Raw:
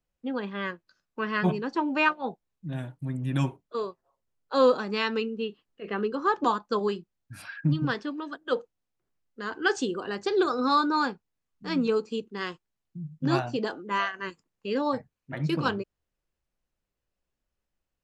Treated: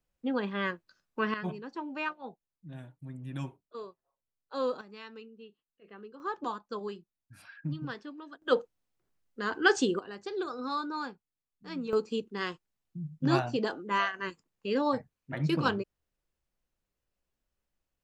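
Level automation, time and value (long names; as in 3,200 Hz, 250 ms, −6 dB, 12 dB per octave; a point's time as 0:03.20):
+0.5 dB
from 0:01.34 −11 dB
from 0:04.81 −19 dB
from 0:06.20 −10.5 dB
from 0:08.42 +1.5 dB
from 0:09.99 −10.5 dB
from 0:11.93 −1 dB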